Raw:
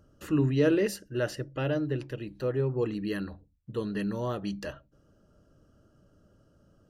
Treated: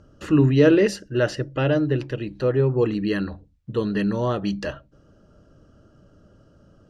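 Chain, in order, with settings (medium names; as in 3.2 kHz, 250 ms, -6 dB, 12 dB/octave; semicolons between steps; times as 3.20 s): low-pass 6.2 kHz 12 dB/octave; trim +8.5 dB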